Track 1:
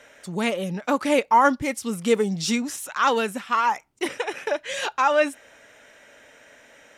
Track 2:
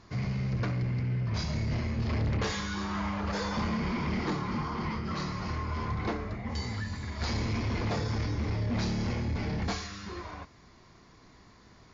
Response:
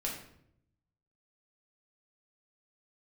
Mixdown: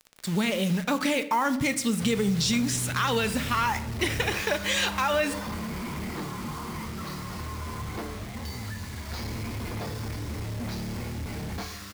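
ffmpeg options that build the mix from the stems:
-filter_complex "[0:a]equalizer=f=125:t=o:w=1:g=10,equalizer=f=250:t=o:w=1:g=4,equalizer=f=2k:t=o:w=1:g=6,equalizer=f=4k:t=o:w=1:g=9,equalizer=f=8k:t=o:w=1:g=6,alimiter=limit=-11.5dB:level=0:latency=1,acrusher=bits=5:mix=0:aa=0.000001,volume=-4.5dB,asplit=2[a][b];[b]volume=-10dB[c];[1:a]alimiter=level_in=4dB:limit=-24dB:level=0:latency=1,volume=-4dB,acrusher=bits=6:mix=0:aa=0.000001,adelay=1900,volume=-0.5dB[d];[2:a]atrim=start_sample=2205[e];[c][e]afir=irnorm=-1:irlink=0[f];[a][d][f]amix=inputs=3:normalize=0,acompressor=threshold=-21dB:ratio=6"

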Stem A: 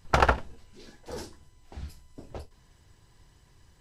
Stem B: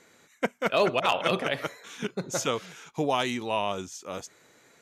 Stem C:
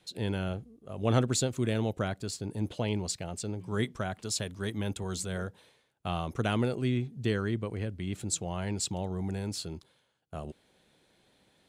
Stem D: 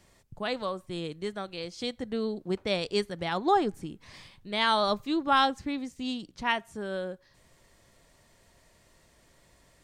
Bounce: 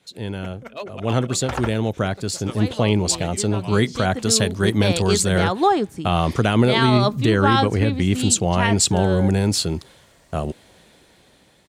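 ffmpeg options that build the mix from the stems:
-filter_complex "[0:a]adelay=1350,volume=-6.5dB[a];[1:a]acrossover=split=410[b][c];[b]aeval=exprs='val(0)*(1-1/2+1/2*cos(2*PI*9.4*n/s))':c=same[d];[c]aeval=exprs='val(0)*(1-1/2-1/2*cos(2*PI*9.4*n/s))':c=same[e];[d][e]amix=inputs=2:normalize=0,volume=-5.5dB[f];[2:a]dynaudnorm=f=890:g=5:m=14.5dB,volume=3dB[g];[3:a]dynaudnorm=f=420:g=9:m=11.5dB,adelay=2150,volume=-1.5dB[h];[a][f][g][h]amix=inputs=4:normalize=0,highpass=43,alimiter=limit=-6dB:level=0:latency=1:release=83"

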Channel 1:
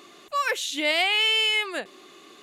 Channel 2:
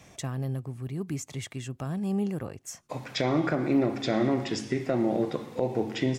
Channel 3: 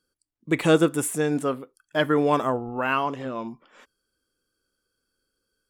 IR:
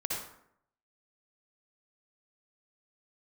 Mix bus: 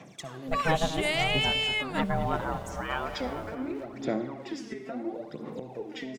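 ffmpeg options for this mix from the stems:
-filter_complex "[0:a]adelay=200,volume=-4.5dB[a];[1:a]highpass=f=150:w=0.5412,highpass=f=150:w=1.3066,acompressor=threshold=-37dB:ratio=3,aphaser=in_gain=1:out_gain=1:delay=4.7:decay=0.74:speed=0.73:type=sinusoidal,volume=-4dB,asplit=2[b][c];[c]volume=-12.5dB[d];[2:a]aeval=exprs='val(0)*sin(2*PI*320*n/s)':c=same,lowpass=10k,acrusher=bits=7:mix=0:aa=0.000001,volume=-5dB,asplit=2[e][f];[f]volume=-12dB[g];[3:a]atrim=start_sample=2205[h];[d][h]afir=irnorm=-1:irlink=0[i];[g]aecho=0:1:218|436|654|872|1090|1308|1526|1744|1962:1|0.58|0.336|0.195|0.113|0.0656|0.0381|0.0221|0.0128[j];[a][b][e][i][j]amix=inputs=5:normalize=0,highshelf=f=5.5k:g=-7.5"

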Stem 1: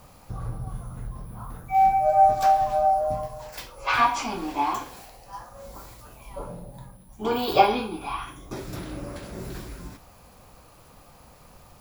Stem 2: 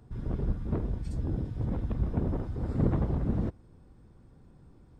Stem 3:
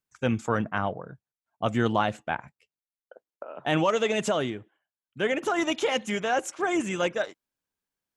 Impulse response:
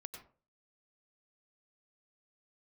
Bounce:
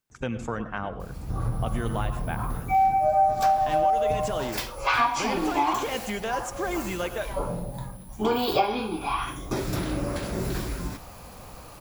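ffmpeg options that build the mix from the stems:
-filter_complex "[0:a]dynaudnorm=f=260:g=3:m=6dB,adelay=1000,volume=1.5dB[a];[1:a]adelay=100,volume=-2dB[b];[2:a]volume=2.5dB,asplit=2[c][d];[d]volume=-8.5dB[e];[b][c]amix=inputs=2:normalize=0,acompressor=threshold=-32dB:ratio=6,volume=0dB[f];[3:a]atrim=start_sample=2205[g];[e][g]afir=irnorm=-1:irlink=0[h];[a][f][h]amix=inputs=3:normalize=0,acompressor=threshold=-23dB:ratio=2.5"

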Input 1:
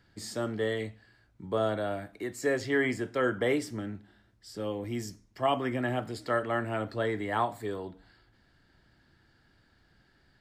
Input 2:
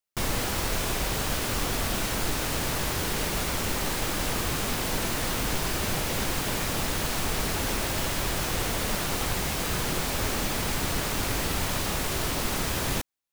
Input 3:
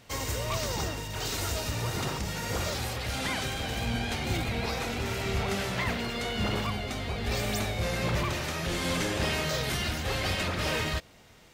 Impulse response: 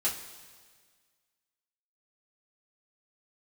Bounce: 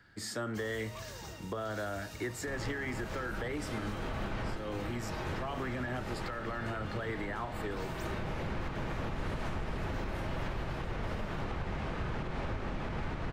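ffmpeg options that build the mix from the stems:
-filter_complex "[0:a]equalizer=f=1.5k:w=1.5:g=8.5,alimiter=limit=-22dB:level=0:latency=1,volume=0dB,asplit=2[a][b];[1:a]lowpass=1.9k,adelay=2300,volume=1dB,asplit=2[c][d];[d]volume=-15.5dB[e];[2:a]adelay=450,volume=-16dB,asplit=2[f][g];[g]volume=-12.5dB[h];[b]apad=whole_len=689066[i];[c][i]sidechaincompress=threshold=-44dB:ratio=8:attack=16:release=580[j];[3:a]atrim=start_sample=2205[k];[e][h]amix=inputs=2:normalize=0[l];[l][k]afir=irnorm=-1:irlink=0[m];[a][j][f][m]amix=inputs=4:normalize=0,acrossover=split=190[n][o];[o]acompressor=threshold=-31dB:ratio=6[p];[n][p]amix=inputs=2:normalize=0,alimiter=level_in=3dB:limit=-24dB:level=0:latency=1:release=294,volume=-3dB"

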